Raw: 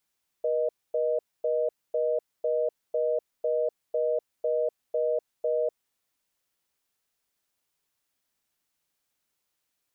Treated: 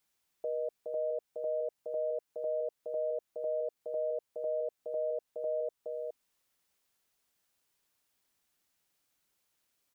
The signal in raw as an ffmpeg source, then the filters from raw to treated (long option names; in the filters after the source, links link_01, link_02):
-f lavfi -i "aevalsrc='0.0501*(sin(2*PI*480*t)+sin(2*PI*620*t))*clip(min(mod(t,0.5),0.25-mod(t,0.5))/0.005,0,1)':duration=5.47:sample_rate=44100"
-filter_complex "[0:a]alimiter=level_in=4dB:limit=-24dB:level=0:latency=1:release=328,volume=-4dB,asplit=2[link_01][link_02];[link_02]aecho=0:1:418:0.631[link_03];[link_01][link_03]amix=inputs=2:normalize=0"